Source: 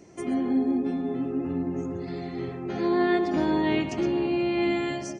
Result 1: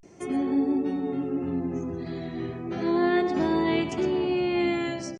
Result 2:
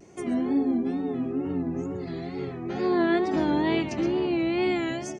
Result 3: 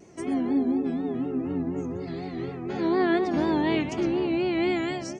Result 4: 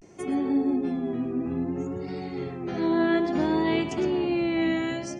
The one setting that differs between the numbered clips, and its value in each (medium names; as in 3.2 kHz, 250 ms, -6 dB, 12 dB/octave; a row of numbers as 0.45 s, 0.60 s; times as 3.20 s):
vibrato, rate: 0.32 Hz, 2.2 Hz, 4.1 Hz, 0.58 Hz